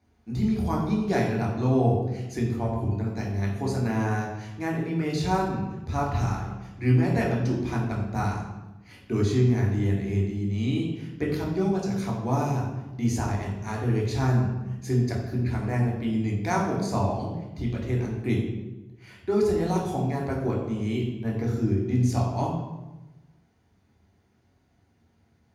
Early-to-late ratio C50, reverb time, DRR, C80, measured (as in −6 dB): 3.5 dB, 1.1 s, −2.0 dB, 6.0 dB